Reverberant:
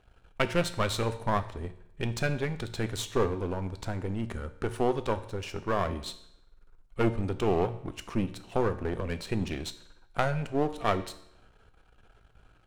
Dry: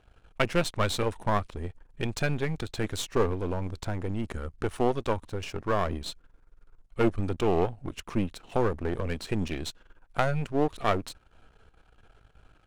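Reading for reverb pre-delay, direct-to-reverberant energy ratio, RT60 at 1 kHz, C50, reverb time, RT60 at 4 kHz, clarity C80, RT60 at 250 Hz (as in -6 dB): 3 ms, 10.0 dB, 0.75 s, 14.0 dB, 0.75 s, 0.70 s, 17.0 dB, 0.75 s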